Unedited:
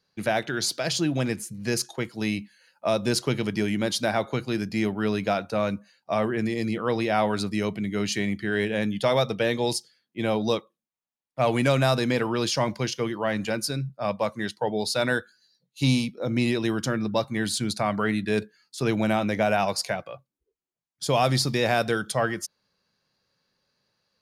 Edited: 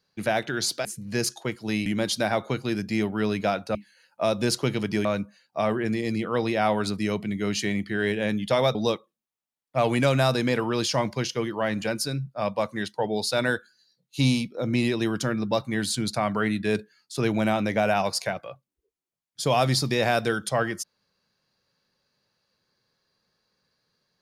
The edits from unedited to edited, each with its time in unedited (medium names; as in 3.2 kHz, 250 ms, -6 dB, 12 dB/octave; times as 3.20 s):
0.85–1.38 s: delete
2.39–3.69 s: move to 5.58 s
9.28–10.38 s: delete